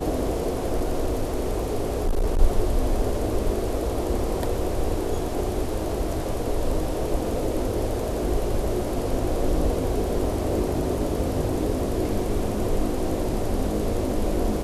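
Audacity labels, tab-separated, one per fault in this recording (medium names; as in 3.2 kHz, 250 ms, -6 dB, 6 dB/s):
0.550000	2.400000	clipped -18 dBFS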